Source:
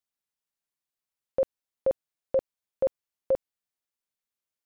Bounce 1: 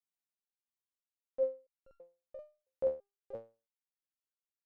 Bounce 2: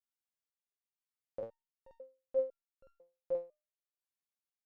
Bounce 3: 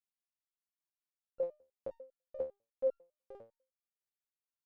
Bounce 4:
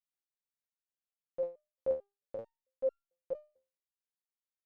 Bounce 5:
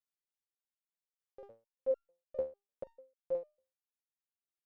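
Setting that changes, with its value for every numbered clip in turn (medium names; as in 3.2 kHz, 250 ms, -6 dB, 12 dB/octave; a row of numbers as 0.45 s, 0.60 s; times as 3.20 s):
resonator arpeggio, rate: 3 Hz, 2 Hz, 10 Hz, 4.5 Hz, 6.7 Hz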